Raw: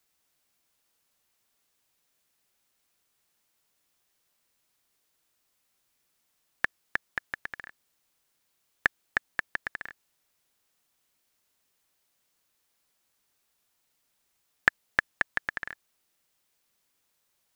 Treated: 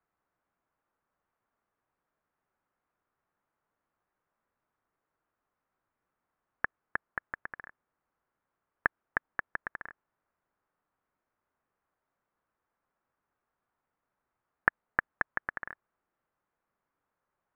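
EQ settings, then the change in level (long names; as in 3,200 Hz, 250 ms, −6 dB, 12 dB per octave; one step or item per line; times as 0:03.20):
transistor ladder low-pass 1,700 Hz, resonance 30%
+5.0 dB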